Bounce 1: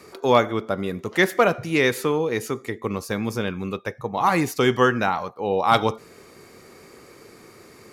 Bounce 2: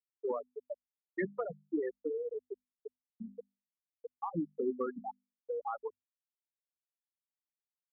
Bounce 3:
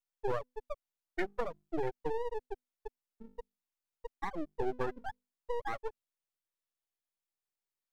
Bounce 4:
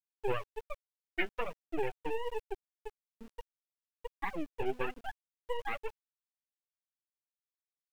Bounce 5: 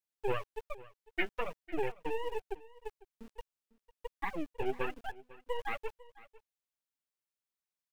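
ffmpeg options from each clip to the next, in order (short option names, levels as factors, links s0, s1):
-filter_complex "[0:a]afftfilt=real='re*gte(hypot(re,im),0.631)':imag='im*gte(hypot(re,im),0.631)':win_size=1024:overlap=0.75,bandreject=f=50:t=h:w=6,bandreject=f=100:t=h:w=6,bandreject=f=150:t=h:w=6,bandreject=f=200:t=h:w=6,bandreject=f=250:t=h:w=6,acrossover=split=300[s0][s1];[s1]acompressor=threshold=0.0355:ratio=10[s2];[s0][s2]amix=inputs=2:normalize=0,volume=0.447"
-filter_complex "[0:a]acrossover=split=380[s0][s1];[s0]alimiter=level_in=3.55:limit=0.0631:level=0:latency=1:release=31,volume=0.282[s2];[s2][s1]amix=inputs=2:normalize=0,lowshelf=f=260:t=q:w=1.5:g=-7.5,aeval=exprs='max(val(0),0)':c=same,volume=1.58"
-af "lowpass=f=2700:t=q:w=6.8,flanger=delay=2.1:depth=7.9:regen=36:speed=1.2:shape=triangular,aeval=exprs='val(0)*gte(abs(val(0)),0.00211)':c=same,volume=1.26"
-af "aecho=1:1:500:0.1"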